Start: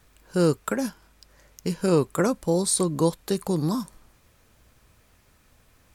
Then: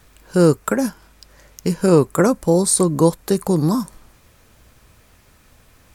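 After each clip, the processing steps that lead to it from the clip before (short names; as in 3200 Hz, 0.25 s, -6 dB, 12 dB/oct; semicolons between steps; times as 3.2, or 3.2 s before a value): dynamic EQ 3400 Hz, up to -7 dB, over -49 dBFS, Q 1.2; gain +7.5 dB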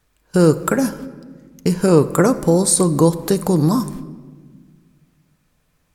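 gate -40 dBFS, range -18 dB; in parallel at +1.5 dB: compressor, threshold -20 dBFS, peak gain reduction 12 dB; on the sum: shoebox room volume 1700 m³, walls mixed, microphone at 0.42 m; gain -2.5 dB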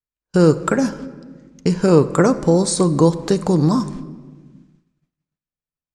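expander -43 dBFS; LPF 7400 Hz 24 dB/oct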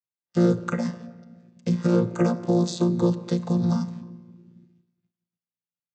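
chord vocoder bare fifth, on A#2; bell 4500 Hz +13.5 dB 2.8 oct; gain -6.5 dB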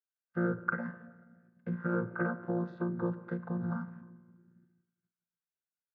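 ladder low-pass 1600 Hz, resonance 80%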